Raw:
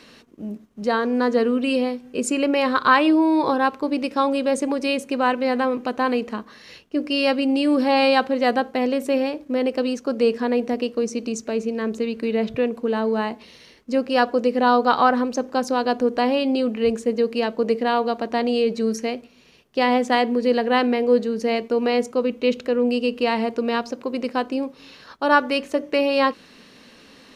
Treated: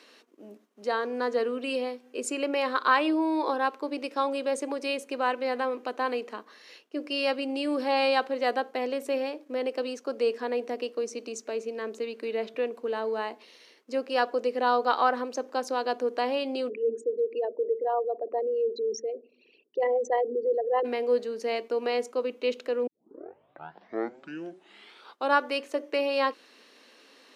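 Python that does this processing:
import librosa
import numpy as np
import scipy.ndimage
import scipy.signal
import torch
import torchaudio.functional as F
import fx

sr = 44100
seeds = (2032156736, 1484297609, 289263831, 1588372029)

y = fx.envelope_sharpen(x, sr, power=3.0, at=(16.68, 20.84), fade=0.02)
y = fx.edit(y, sr, fx.tape_start(start_s=22.87, length_s=2.52), tone=tone)
y = scipy.signal.sosfilt(scipy.signal.butter(4, 310.0, 'highpass', fs=sr, output='sos'), y)
y = y * librosa.db_to_amplitude(-6.5)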